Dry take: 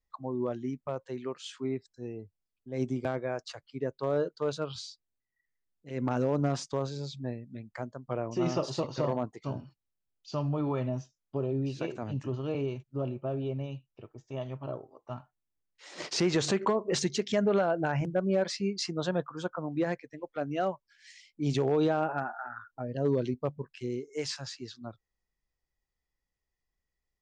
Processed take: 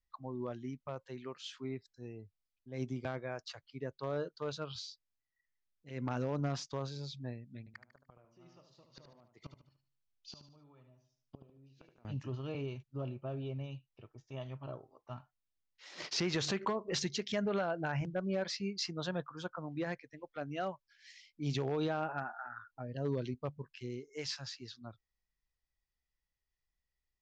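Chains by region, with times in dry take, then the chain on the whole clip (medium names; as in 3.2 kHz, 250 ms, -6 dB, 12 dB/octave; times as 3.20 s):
7.59–12.05 s: inverted gate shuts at -29 dBFS, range -25 dB + feedback delay 74 ms, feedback 39%, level -8.5 dB
whole clip: low-pass 6.2 kHz 24 dB/octave; peaking EQ 410 Hz -7 dB 2.8 oct; trim -2 dB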